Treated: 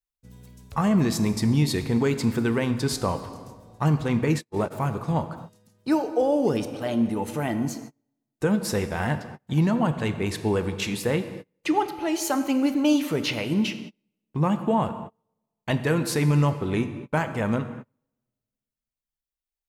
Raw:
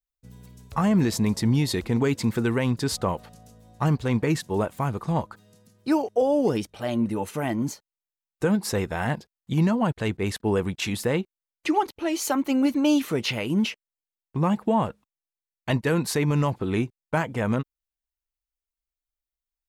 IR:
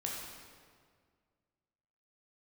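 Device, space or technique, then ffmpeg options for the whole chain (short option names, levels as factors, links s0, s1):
keyed gated reverb: -filter_complex "[0:a]asplit=3[s0][s1][s2];[1:a]atrim=start_sample=2205[s3];[s1][s3]afir=irnorm=-1:irlink=0[s4];[s2]apad=whole_len=867966[s5];[s4][s5]sidechaingate=range=0.0224:threshold=0.00282:ratio=16:detection=peak,volume=0.473[s6];[s0][s6]amix=inputs=2:normalize=0,asplit=3[s7][s8][s9];[s7]afade=t=out:st=4.25:d=0.02[s10];[s8]agate=range=0.00355:threshold=0.0891:ratio=16:detection=peak,afade=t=in:st=4.25:d=0.02,afade=t=out:st=4.7:d=0.02[s11];[s9]afade=t=in:st=4.7:d=0.02[s12];[s10][s11][s12]amix=inputs=3:normalize=0,volume=0.708"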